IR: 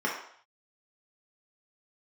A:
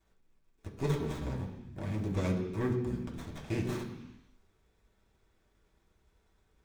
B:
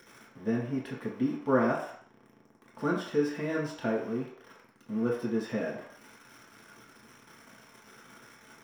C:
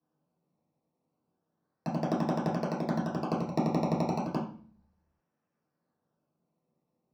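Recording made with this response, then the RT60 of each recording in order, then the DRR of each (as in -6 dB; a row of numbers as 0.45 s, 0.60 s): B; 0.95 s, 0.60 s, 0.45 s; -2.5 dB, -4.5 dB, -7.0 dB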